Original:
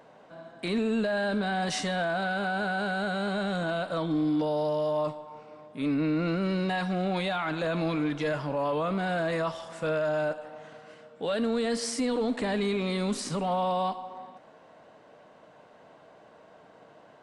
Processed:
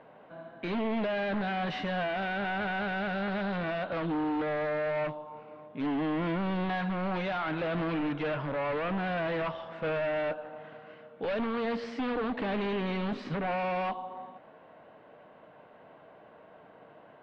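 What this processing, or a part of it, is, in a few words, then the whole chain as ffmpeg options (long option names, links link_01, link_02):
synthesiser wavefolder: -af "aeval=exprs='0.0501*(abs(mod(val(0)/0.0501+3,4)-2)-1)':channel_layout=same,lowpass=frequency=3100:width=0.5412,lowpass=frequency=3100:width=1.3066"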